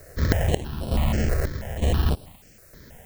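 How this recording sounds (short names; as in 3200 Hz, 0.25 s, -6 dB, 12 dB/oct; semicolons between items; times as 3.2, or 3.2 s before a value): aliases and images of a low sample rate 1200 Hz, jitter 0%; chopped level 1.1 Hz, depth 65%, duty 60%; a quantiser's noise floor 10-bit, dither triangular; notches that jump at a steady rate 6.2 Hz 880–6700 Hz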